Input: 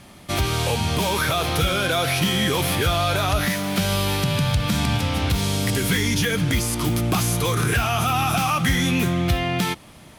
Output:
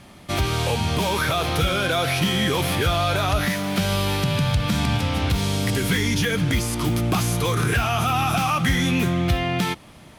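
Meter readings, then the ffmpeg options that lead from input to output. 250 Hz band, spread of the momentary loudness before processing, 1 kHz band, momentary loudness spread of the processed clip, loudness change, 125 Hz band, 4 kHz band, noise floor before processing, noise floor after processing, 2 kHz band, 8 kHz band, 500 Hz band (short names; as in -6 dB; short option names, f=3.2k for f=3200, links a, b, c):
0.0 dB, 2 LU, 0.0 dB, 3 LU, -0.5 dB, 0.0 dB, -1.0 dB, -46 dBFS, -46 dBFS, -0.5 dB, -3.0 dB, 0.0 dB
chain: -af "highshelf=f=6.1k:g=-5"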